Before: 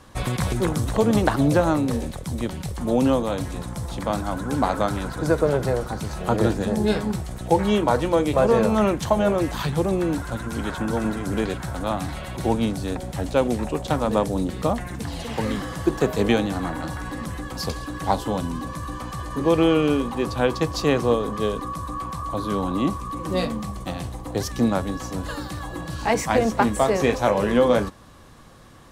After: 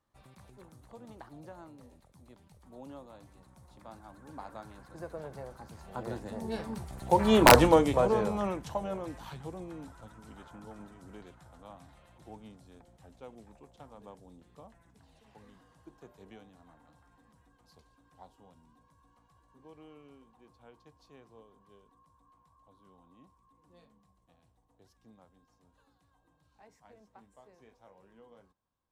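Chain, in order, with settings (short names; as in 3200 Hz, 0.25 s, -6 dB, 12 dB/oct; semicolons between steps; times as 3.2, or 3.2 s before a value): Doppler pass-by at 7.54, 18 m/s, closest 2.3 m; wrapped overs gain 9 dB; bell 870 Hz +4.5 dB 0.83 oct; gain +3 dB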